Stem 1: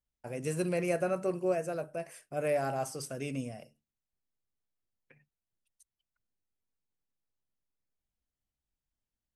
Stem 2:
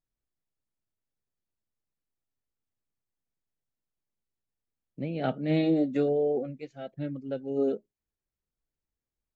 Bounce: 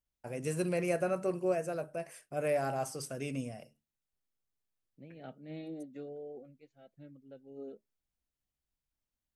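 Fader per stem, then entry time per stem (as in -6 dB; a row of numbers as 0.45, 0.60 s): -1.0, -18.5 dB; 0.00, 0.00 s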